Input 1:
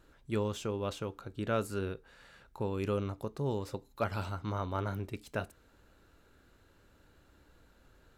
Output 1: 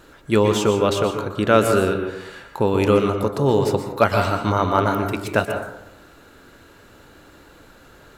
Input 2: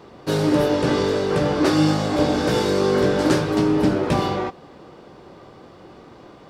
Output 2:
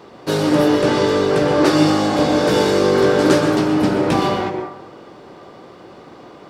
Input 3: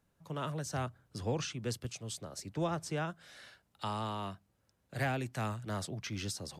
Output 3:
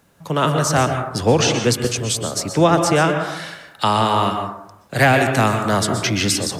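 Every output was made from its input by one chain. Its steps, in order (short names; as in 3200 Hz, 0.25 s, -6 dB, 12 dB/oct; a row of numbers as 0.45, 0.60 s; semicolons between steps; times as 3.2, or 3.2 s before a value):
low shelf 110 Hz -11 dB; plate-style reverb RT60 0.82 s, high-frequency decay 0.35×, pre-delay 0.11 s, DRR 5 dB; normalise peaks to -2 dBFS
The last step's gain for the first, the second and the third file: +17.0, +3.5, +20.5 dB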